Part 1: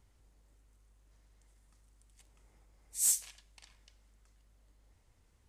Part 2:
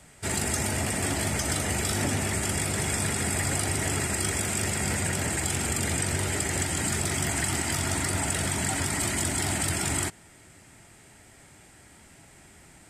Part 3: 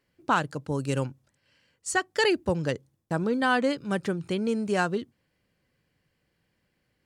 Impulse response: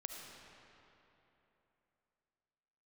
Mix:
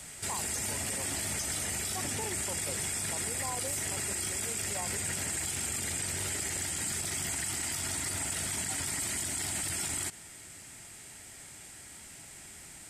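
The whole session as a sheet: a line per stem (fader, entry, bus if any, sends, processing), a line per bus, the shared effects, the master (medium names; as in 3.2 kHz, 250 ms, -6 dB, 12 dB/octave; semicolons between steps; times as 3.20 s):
-9.0 dB, 0.65 s, no send, none
-2.5 dB, 0.00 s, no send, gain riding
-0.5 dB, 0.00 s, no send, high-pass 630 Hz 12 dB/octave; steep low-pass 1.1 kHz 96 dB/octave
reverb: none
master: treble shelf 2.4 kHz +11.5 dB; peak limiter -25 dBFS, peak gain reduction 18 dB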